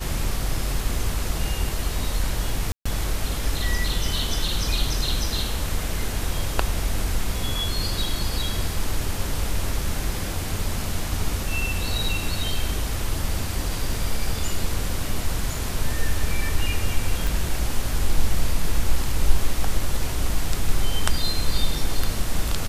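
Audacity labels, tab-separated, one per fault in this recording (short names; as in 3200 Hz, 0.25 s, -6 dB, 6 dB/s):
2.720000	2.850000	gap 0.135 s
17.270000	17.270000	pop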